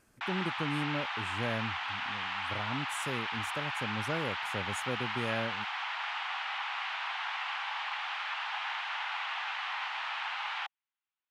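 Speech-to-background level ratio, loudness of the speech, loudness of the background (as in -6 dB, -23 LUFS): -3.0 dB, -38.0 LUFS, -35.0 LUFS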